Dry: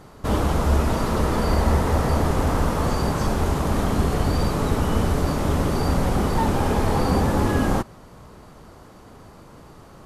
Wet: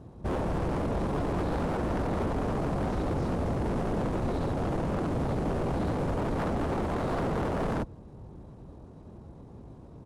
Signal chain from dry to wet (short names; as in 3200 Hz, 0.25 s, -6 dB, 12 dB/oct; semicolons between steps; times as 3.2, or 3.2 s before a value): HPF 46 Hz 12 dB/oct; tilt shelf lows +9.5 dB, about 910 Hz; wavefolder -16 dBFS; pitch shift -3 st; gain -8 dB